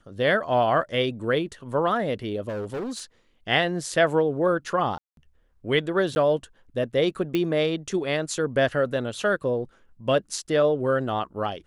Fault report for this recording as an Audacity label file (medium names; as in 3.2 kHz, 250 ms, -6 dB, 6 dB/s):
2.480000	3.020000	clipped -27.5 dBFS
4.980000	5.170000	dropout 192 ms
6.150000	6.160000	dropout
7.350000	7.350000	pop -13 dBFS